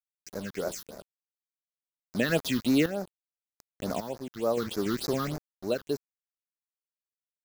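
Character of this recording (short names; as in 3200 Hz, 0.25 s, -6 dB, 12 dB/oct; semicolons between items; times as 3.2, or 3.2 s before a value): a quantiser's noise floor 6-bit, dither none; random-step tremolo 3.5 Hz, depth 85%; phasing stages 6, 3.4 Hz, lowest notch 620–3000 Hz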